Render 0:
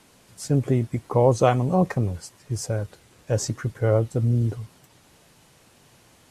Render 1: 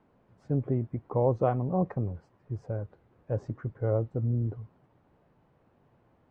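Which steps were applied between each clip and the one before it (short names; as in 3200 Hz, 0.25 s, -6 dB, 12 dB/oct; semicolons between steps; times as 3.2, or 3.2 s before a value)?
LPF 1100 Hz 12 dB/oct; gain -7 dB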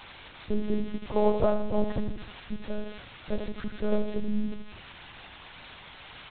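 switching spikes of -26 dBFS; on a send: feedback echo 82 ms, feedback 43%, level -8 dB; on the sum: monotone LPC vocoder at 8 kHz 210 Hz; gain +2 dB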